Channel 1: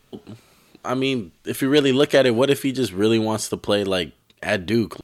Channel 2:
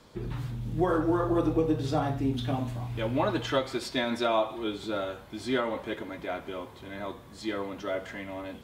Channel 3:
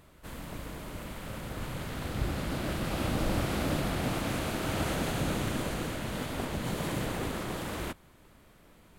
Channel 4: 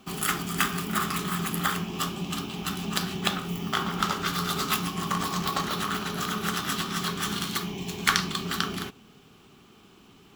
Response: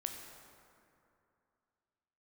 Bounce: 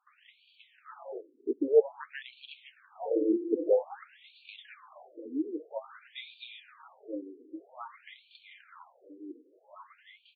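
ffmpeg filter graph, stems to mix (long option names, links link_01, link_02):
-filter_complex "[0:a]afwtdn=0.112,lowpass=6700,volume=0.5dB[link_01];[1:a]lowpass=4100,equalizer=frequency=310:width=7.5:gain=11.5,adelay=2200,volume=-3.5dB[link_02];[2:a]lowpass=1300,asoftclip=type=tanh:threshold=-31.5dB,adelay=200,volume=-15.5dB[link_03];[3:a]acompressor=threshold=-34dB:ratio=4,volume=-12dB[link_04];[link_01][link_02][link_03][link_04]amix=inputs=4:normalize=0,volume=9dB,asoftclip=hard,volume=-9dB,flanger=delay=2.1:depth=6.1:regen=-28:speed=0.68:shape=triangular,afftfilt=real='re*between(b*sr/1024,330*pow(3300/330,0.5+0.5*sin(2*PI*0.51*pts/sr))/1.41,330*pow(3300/330,0.5+0.5*sin(2*PI*0.51*pts/sr))*1.41)':imag='im*between(b*sr/1024,330*pow(3300/330,0.5+0.5*sin(2*PI*0.51*pts/sr))/1.41,330*pow(3300/330,0.5+0.5*sin(2*PI*0.51*pts/sr))*1.41)':win_size=1024:overlap=0.75"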